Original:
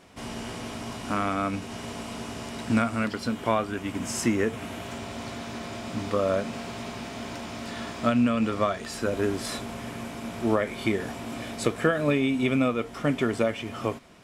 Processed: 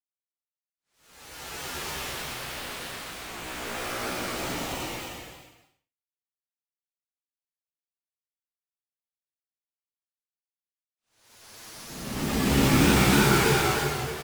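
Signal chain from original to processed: tracing distortion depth 0.035 ms; notch 1400 Hz, Q 29; in parallel at 0 dB: limiter -21 dBFS, peak gain reduction 11.5 dB; on the sum: upward compressor, threshold -28 dBFS; formant-preserving pitch shift -8.5 st; random-step tremolo 3.5 Hz, depth 55%; soft clip -20.5 dBFS, distortion -12 dB; bit-crush 4-bit; Paulstretch 6.8×, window 0.25 s, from 0.86; on a send: bouncing-ball echo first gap 0.12 s, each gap 0.8×, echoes 5; on the sum: shaped vibrato saw down 3.2 Hz, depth 100 cents

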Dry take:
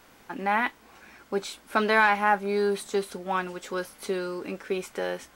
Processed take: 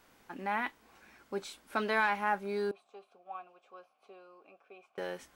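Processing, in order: 2.71–4.98 vowel filter a; gain -8.5 dB

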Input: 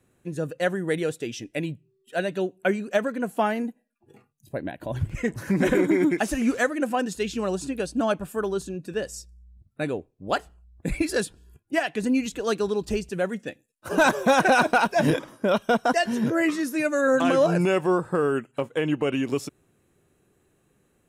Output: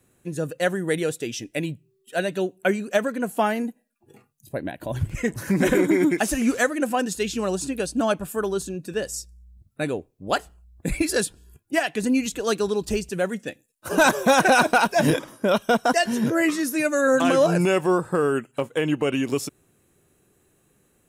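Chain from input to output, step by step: high shelf 5800 Hz +8.5 dB; gain +1.5 dB

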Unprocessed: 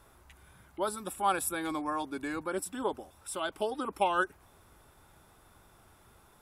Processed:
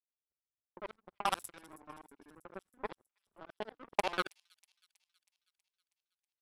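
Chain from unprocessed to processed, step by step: local time reversal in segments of 48 ms; in parallel at -1.5 dB: compressor, threshold -46 dBFS, peak gain reduction 20.5 dB; on the sum: power-law curve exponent 3; sine folder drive 5 dB, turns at -12 dBFS; low-pass opened by the level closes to 860 Hz, open at -33.5 dBFS; on a send: thin delay 0.321 s, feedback 59%, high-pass 5500 Hz, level -17.5 dB; on the sum: gain +1 dB

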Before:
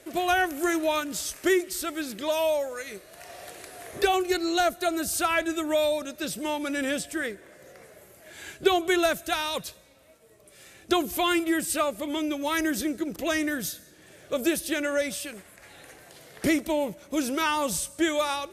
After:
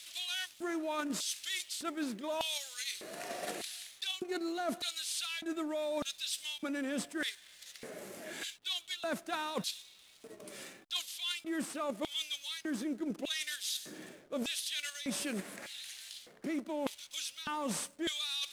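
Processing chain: CVSD 64 kbps; LFO high-pass square 0.83 Hz 220–3500 Hz; in parallel at 0 dB: level quantiser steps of 14 dB; on the sum: dynamic EQ 1000 Hz, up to +5 dB, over -35 dBFS, Q 0.99; reverse; compressor 12:1, threshold -34 dBFS, peak gain reduction 21.5 dB; reverse; backlash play -56 dBFS

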